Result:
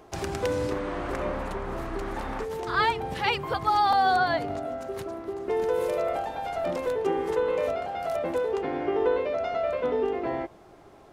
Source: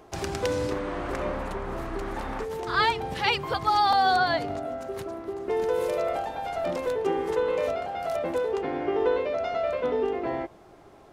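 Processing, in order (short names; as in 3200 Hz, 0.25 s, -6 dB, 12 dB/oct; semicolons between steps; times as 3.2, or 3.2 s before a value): dynamic EQ 4900 Hz, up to -5 dB, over -42 dBFS, Q 0.78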